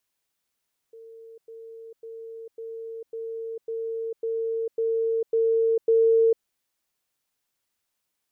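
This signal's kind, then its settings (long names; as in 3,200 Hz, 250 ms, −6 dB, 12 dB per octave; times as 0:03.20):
level staircase 453 Hz −42.5 dBFS, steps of 3 dB, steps 10, 0.45 s 0.10 s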